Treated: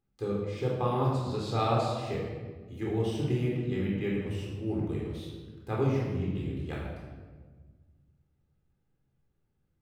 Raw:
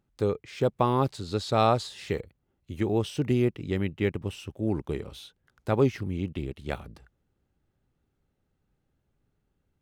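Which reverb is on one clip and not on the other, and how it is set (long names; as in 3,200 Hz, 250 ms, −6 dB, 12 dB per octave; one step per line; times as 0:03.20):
rectangular room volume 1,300 cubic metres, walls mixed, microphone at 3.9 metres
level −11.5 dB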